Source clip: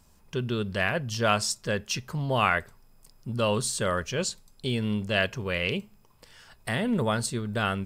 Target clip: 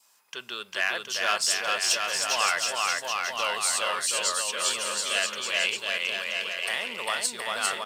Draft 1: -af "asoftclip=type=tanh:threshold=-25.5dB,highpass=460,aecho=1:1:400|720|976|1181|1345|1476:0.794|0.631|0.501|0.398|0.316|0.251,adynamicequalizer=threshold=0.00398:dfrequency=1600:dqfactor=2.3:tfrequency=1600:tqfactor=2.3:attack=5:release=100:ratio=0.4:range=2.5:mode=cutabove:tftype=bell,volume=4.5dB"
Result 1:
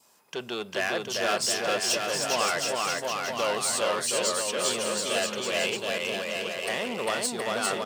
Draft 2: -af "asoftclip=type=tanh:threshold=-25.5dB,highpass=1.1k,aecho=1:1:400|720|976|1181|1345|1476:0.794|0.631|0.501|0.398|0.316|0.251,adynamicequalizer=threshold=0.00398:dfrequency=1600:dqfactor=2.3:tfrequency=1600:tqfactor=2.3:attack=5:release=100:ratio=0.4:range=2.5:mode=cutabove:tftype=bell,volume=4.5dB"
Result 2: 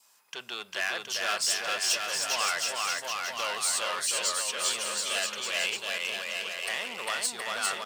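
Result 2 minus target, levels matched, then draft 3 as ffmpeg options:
soft clip: distortion +8 dB
-af "asoftclip=type=tanh:threshold=-16.5dB,highpass=1.1k,aecho=1:1:400|720|976|1181|1345|1476:0.794|0.631|0.501|0.398|0.316|0.251,adynamicequalizer=threshold=0.00398:dfrequency=1600:dqfactor=2.3:tfrequency=1600:tqfactor=2.3:attack=5:release=100:ratio=0.4:range=2.5:mode=cutabove:tftype=bell,volume=4.5dB"

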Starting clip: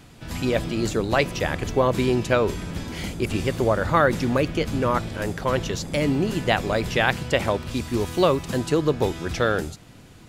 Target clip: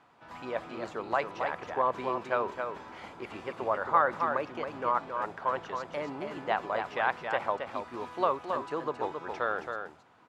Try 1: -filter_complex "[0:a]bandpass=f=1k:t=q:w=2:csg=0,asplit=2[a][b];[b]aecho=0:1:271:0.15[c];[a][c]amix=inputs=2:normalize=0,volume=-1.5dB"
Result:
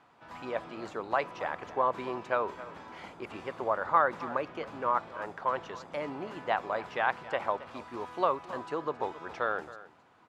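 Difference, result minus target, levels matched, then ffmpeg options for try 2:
echo-to-direct -10.5 dB
-filter_complex "[0:a]bandpass=f=1k:t=q:w=2:csg=0,asplit=2[a][b];[b]aecho=0:1:271:0.501[c];[a][c]amix=inputs=2:normalize=0,volume=-1.5dB"

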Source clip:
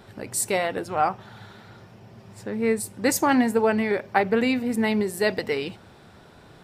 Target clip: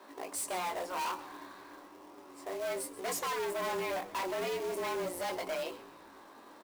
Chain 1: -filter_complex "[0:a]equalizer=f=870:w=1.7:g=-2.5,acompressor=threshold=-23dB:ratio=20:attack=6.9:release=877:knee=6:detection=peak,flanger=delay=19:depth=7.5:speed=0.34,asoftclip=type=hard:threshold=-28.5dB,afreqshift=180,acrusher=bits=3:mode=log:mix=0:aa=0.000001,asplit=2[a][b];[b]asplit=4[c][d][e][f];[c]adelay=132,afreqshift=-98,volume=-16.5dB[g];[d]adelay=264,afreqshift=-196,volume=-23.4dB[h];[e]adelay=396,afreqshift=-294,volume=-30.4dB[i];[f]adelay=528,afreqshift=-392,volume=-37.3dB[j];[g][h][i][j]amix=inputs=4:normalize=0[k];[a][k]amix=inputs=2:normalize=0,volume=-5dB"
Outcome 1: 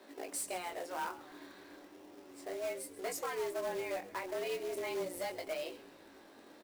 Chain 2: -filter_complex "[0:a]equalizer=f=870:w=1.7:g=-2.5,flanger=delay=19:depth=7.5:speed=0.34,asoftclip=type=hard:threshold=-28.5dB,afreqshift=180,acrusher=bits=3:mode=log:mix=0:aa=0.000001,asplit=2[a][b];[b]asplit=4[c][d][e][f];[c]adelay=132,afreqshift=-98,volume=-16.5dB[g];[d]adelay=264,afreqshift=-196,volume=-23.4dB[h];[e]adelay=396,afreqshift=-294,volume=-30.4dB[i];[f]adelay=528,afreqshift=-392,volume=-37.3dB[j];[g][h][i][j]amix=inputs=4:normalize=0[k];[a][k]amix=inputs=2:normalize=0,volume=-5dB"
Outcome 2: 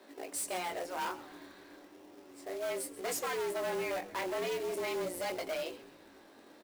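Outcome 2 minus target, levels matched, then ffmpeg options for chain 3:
1000 Hz band -2.5 dB
-filter_complex "[0:a]equalizer=f=870:w=1.7:g=9.5,flanger=delay=19:depth=7.5:speed=0.34,asoftclip=type=hard:threshold=-28.5dB,afreqshift=180,acrusher=bits=3:mode=log:mix=0:aa=0.000001,asplit=2[a][b];[b]asplit=4[c][d][e][f];[c]adelay=132,afreqshift=-98,volume=-16.5dB[g];[d]adelay=264,afreqshift=-196,volume=-23.4dB[h];[e]adelay=396,afreqshift=-294,volume=-30.4dB[i];[f]adelay=528,afreqshift=-392,volume=-37.3dB[j];[g][h][i][j]amix=inputs=4:normalize=0[k];[a][k]amix=inputs=2:normalize=0,volume=-5dB"

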